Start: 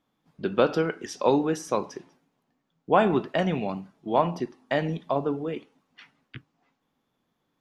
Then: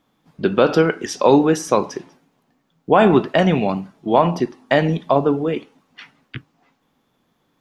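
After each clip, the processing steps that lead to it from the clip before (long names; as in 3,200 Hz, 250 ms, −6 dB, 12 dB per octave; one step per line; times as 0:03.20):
boost into a limiter +11 dB
level −1 dB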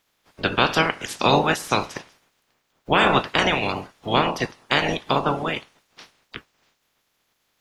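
ceiling on every frequency bin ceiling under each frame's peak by 25 dB
level −4.5 dB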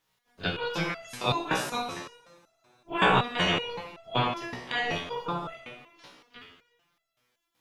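echo ahead of the sound 38 ms −20 dB
coupled-rooms reverb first 0.74 s, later 2.8 s, from −18 dB, DRR 1.5 dB
step-sequenced resonator 5.3 Hz 62–670 Hz
level +1 dB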